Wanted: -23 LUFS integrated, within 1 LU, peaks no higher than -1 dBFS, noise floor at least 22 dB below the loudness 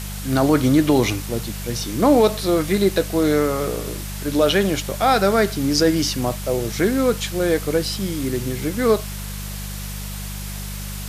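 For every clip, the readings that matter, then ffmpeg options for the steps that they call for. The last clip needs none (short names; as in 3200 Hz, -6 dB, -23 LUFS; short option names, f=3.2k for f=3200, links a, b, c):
hum 50 Hz; harmonics up to 200 Hz; hum level -28 dBFS; noise floor -30 dBFS; noise floor target -42 dBFS; loudness -20.0 LUFS; peak -5.0 dBFS; loudness target -23.0 LUFS
-> -af "bandreject=f=50:t=h:w=4,bandreject=f=100:t=h:w=4,bandreject=f=150:t=h:w=4,bandreject=f=200:t=h:w=4"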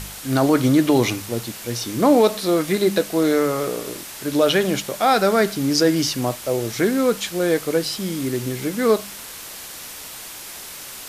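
hum none; noise floor -36 dBFS; noise floor target -42 dBFS
-> -af "afftdn=nr=6:nf=-36"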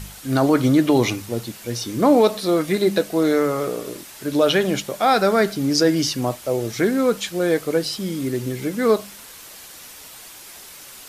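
noise floor -41 dBFS; noise floor target -42 dBFS
-> -af "afftdn=nr=6:nf=-41"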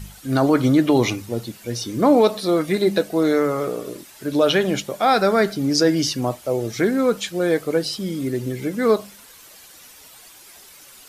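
noise floor -46 dBFS; loudness -20.0 LUFS; peak -6.0 dBFS; loudness target -23.0 LUFS
-> -af "volume=-3dB"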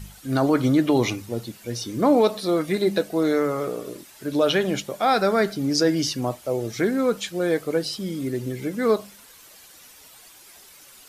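loudness -23.0 LUFS; peak -9.0 dBFS; noise floor -49 dBFS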